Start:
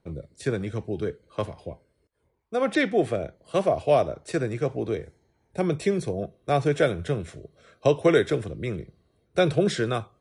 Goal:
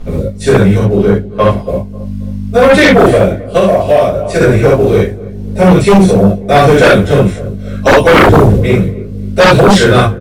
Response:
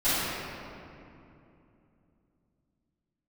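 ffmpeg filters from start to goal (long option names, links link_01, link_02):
-filter_complex "[0:a]aeval=exprs='val(0)+0.0112*(sin(2*PI*50*n/s)+sin(2*PI*2*50*n/s)/2+sin(2*PI*3*50*n/s)/3+sin(2*PI*4*50*n/s)/4+sin(2*PI*5*50*n/s)/5)':channel_layout=same,agate=range=-33dB:threshold=-29dB:ratio=3:detection=peak,asettb=1/sr,asplit=3[link_01][link_02][link_03];[link_01]atrim=end=8.114[link_04];[link_02]atrim=start=8.11:end=8.58,asetpts=PTS-STARTPTS,afade=type=in:duration=0.004:curve=qsin,afade=type=out:start_time=0.466:duration=0.004:curve=qsin,tiltshelf=frequency=730:gain=9.5[link_05];[link_03]atrim=start=8.576[link_06];[link_04][link_05]acrossfade=duration=0.004:curve1=hsin:curve2=qsin[link_07];[link_07][link_06]acrossfade=duration=0.004:curve1=qsin:curve2=hsin,acompressor=mode=upward:threshold=-27dB:ratio=2.5,acrusher=bits=8:mode=log:mix=0:aa=0.000001,asettb=1/sr,asplit=3[link_08][link_09][link_10];[link_08]atrim=end=0.774[link_11];[link_09]atrim=start=0.77:end=1.49,asetpts=PTS-STARTPTS,afade=type=in:duration=0.004:curve=qsin,afade=type=out:start_time=0.716:duration=0.004:curve=qsin,highshelf=frequency=5200:gain=-9.5[link_12];[link_10]atrim=start=1.486[link_13];[link_11][link_12]acrossfade=duration=0.004:curve1=hsin:curve2=qsin[link_14];[link_14][link_13]acrossfade=duration=0.004:curve1=qsin:curve2=hsin,asplit=2[link_15][link_16];[link_16]adelay=270,lowpass=frequency=1200:poles=1,volume=-20dB,asplit=2[link_17][link_18];[link_18]adelay=270,lowpass=frequency=1200:poles=1,volume=0.46,asplit=2[link_19][link_20];[link_20]adelay=270,lowpass=frequency=1200:poles=1,volume=0.46[link_21];[link_15][link_17][link_19][link_21]amix=inputs=4:normalize=0[link_22];[1:a]atrim=start_sample=2205,atrim=end_sample=3087,asetrate=31752,aresample=44100[link_23];[link_22][link_23]afir=irnorm=-1:irlink=0,asettb=1/sr,asplit=3[link_24][link_25][link_26];[link_24]atrim=end=3.574[link_27];[link_25]atrim=start=3.57:end=4.41,asetpts=PTS-STARTPTS,afade=type=in:duration=0.004:curve=qsin,afade=type=out:start_time=0.836:duration=0.004:curve=qsin,acompressor=threshold=-16dB:ratio=2.5[link_28];[link_26]atrim=start=4.406[link_29];[link_27][link_28]acrossfade=duration=0.004:curve1=hsin:curve2=qsin[link_30];[link_30][link_29]acrossfade=duration=0.004:curve1=qsin:curve2=hsin,aeval=exprs='2.66*sin(PI/2*5.01*val(0)/2.66)':channel_layout=same,volume=-9.5dB"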